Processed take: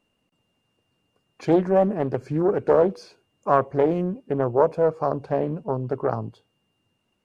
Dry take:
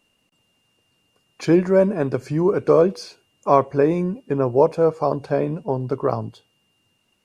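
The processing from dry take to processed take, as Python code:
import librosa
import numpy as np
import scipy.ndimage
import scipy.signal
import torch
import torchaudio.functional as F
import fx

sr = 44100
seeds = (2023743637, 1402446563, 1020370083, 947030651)

y = fx.high_shelf(x, sr, hz=2000.0, db=-9.5)
y = fx.doppler_dist(y, sr, depth_ms=0.42)
y = y * 10.0 ** (-2.0 / 20.0)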